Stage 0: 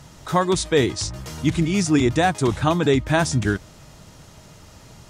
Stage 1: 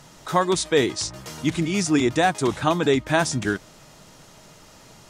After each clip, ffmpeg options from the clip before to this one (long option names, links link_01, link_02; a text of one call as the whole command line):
ffmpeg -i in.wav -af "equalizer=frequency=67:width_type=o:width=1.9:gain=-13.5" out.wav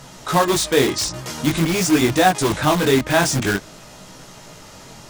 ffmpeg -i in.wav -filter_complex "[0:a]flanger=delay=15.5:depth=7.8:speed=0.48,asplit=2[link_01][link_02];[link_02]aeval=exprs='(mod(16.8*val(0)+1,2)-1)/16.8':channel_layout=same,volume=-5dB[link_03];[link_01][link_03]amix=inputs=2:normalize=0,volume=6.5dB" out.wav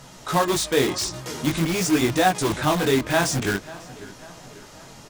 ffmpeg -i in.wav -filter_complex "[0:a]asplit=2[link_01][link_02];[link_02]adelay=544,lowpass=frequency=4000:poles=1,volume=-18.5dB,asplit=2[link_03][link_04];[link_04]adelay=544,lowpass=frequency=4000:poles=1,volume=0.52,asplit=2[link_05][link_06];[link_06]adelay=544,lowpass=frequency=4000:poles=1,volume=0.52,asplit=2[link_07][link_08];[link_08]adelay=544,lowpass=frequency=4000:poles=1,volume=0.52[link_09];[link_01][link_03][link_05][link_07][link_09]amix=inputs=5:normalize=0,volume=-4dB" out.wav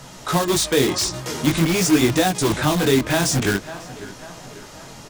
ffmpeg -i in.wav -filter_complex "[0:a]acrossover=split=390|3000[link_01][link_02][link_03];[link_02]acompressor=threshold=-25dB:ratio=6[link_04];[link_01][link_04][link_03]amix=inputs=3:normalize=0,volume=4.5dB" out.wav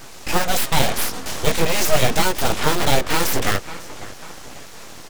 ffmpeg -i in.wav -af "aeval=exprs='abs(val(0))':channel_layout=same,volume=3dB" out.wav